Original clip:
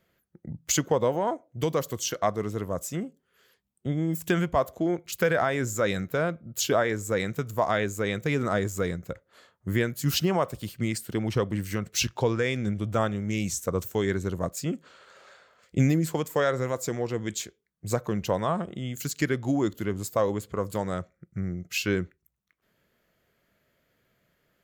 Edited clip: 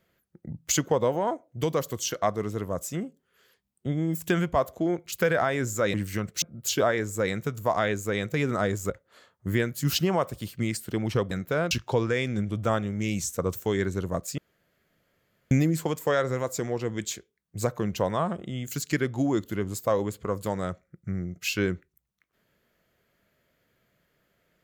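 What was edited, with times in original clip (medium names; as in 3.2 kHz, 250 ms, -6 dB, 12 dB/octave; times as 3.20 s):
5.94–6.34 s: swap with 11.52–12.00 s
8.82–9.11 s: delete
14.67–15.80 s: room tone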